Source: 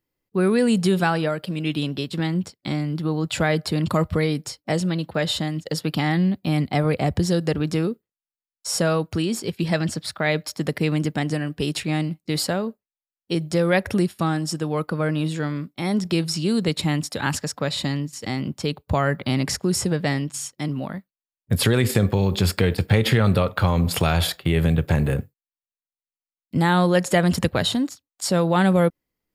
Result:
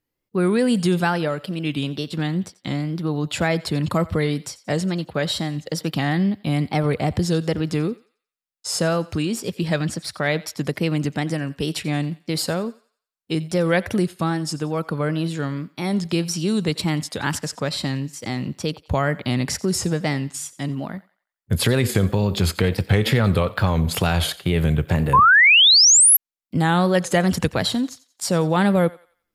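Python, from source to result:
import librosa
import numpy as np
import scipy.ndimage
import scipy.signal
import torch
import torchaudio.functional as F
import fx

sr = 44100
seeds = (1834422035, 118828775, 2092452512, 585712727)

y = fx.wow_flutter(x, sr, seeds[0], rate_hz=2.1, depth_cents=100.0)
y = fx.echo_thinned(y, sr, ms=89, feedback_pct=39, hz=740.0, wet_db=-18.5)
y = fx.spec_paint(y, sr, seeds[1], shape='rise', start_s=25.13, length_s=1.04, low_hz=970.0, high_hz=12000.0, level_db=-12.0)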